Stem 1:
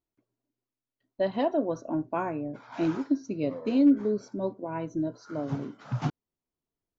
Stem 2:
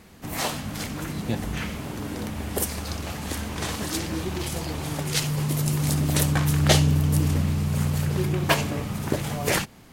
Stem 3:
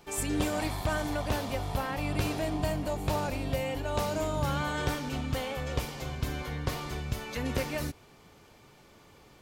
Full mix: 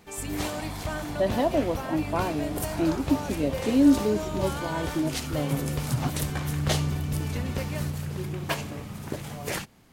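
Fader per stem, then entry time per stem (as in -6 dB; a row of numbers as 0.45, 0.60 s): +2.0, -8.0, -2.5 dB; 0.00, 0.00, 0.00 s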